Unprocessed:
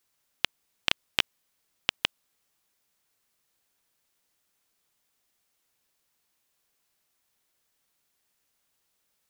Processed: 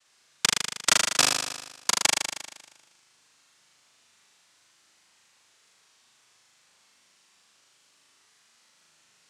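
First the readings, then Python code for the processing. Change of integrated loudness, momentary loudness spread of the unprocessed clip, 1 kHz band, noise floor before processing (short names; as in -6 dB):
+7.0 dB, 5 LU, +11.0 dB, -76 dBFS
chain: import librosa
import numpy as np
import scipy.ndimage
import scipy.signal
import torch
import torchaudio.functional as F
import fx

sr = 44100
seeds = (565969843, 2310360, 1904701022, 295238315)

p1 = fx.noise_vocoder(x, sr, seeds[0], bands=2)
p2 = p1 + fx.room_flutter(p1, sr, wall_m=6.7, rt60_s=1.1, dry=0)
y = F.gain(torch.from_numpy(p2), 4.0).numpy()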